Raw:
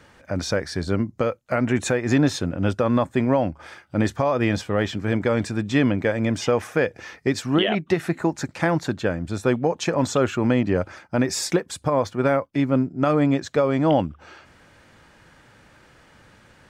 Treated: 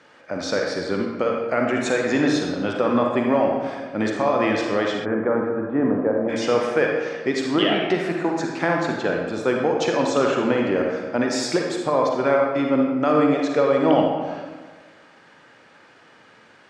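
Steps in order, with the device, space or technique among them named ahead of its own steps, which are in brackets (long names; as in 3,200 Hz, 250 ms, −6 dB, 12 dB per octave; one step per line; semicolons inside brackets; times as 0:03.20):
supermarket ceiling speaker (band-pass filter 250–6,100 Hz; convolution reverb RT60 1.4 s, pre-delay 40 ms, DRR 0 dB)
0:05.04–0:06.28: low-pass filter 1,700 Hz → 1,100 Hz 24 dB per octave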